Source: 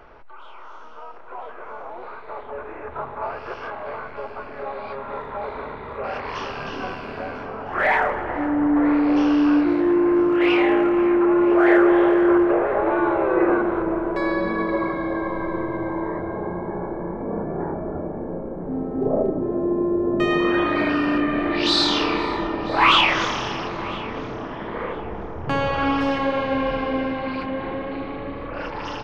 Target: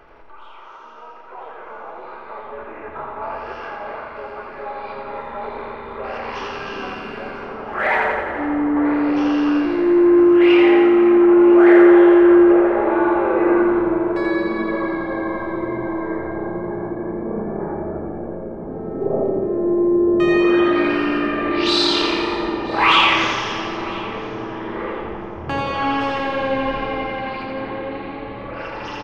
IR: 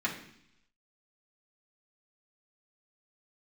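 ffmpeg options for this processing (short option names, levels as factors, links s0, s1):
-filter_complex "[0:a]aecho=1:1:86|172|258|344|430|516|602|688|774:0.631|0.379|0.227|0.136|0.0818|0.0491|0.0294|0.0177|0.0106,asplit=2[s0][s1];[1:a]atrim=start_sample=2205,asetrate=48510,aresample=44100[s2];[s1][s2]afir=irnorm=-1:irlink=0,volume=0.188[s3];[s0][s3]amix=inputs=2:normalize=0,volume=0.841"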